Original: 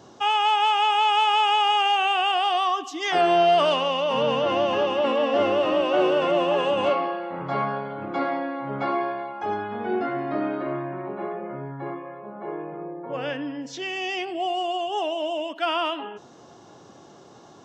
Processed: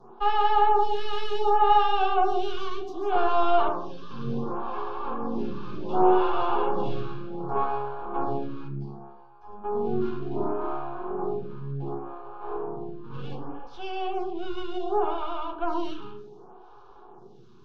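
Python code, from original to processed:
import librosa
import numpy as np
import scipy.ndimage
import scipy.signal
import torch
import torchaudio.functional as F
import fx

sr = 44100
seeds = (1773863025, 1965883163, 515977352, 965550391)

y = fx.fixed_phaser(x, sr, hz=2900.0, stages=6, at=(3.68, 5.89))
y = fx.spec_box(y, sr, start_s=8.68, length_s=0.96, low_hz=250.0, high_hz=4500.0, gain_db=-20)
y = np.maximum(y, 0.0)
y = fx.air_absorb(y, sr, metres=280.0)
y = fx.fixed_phaser(y, sr, hz=390.0, stages=8)
y = fx.rev_fdn(y, sr, rt60_s=0.79, lf_ratio=1.1, hf_ratio=0.4, size_ms=24.0, drr_db=0.5)
y = fx.stagger_phaser(y, sr, hz=0.67)
y = y * 10.0 ** (5.0 / 20.0)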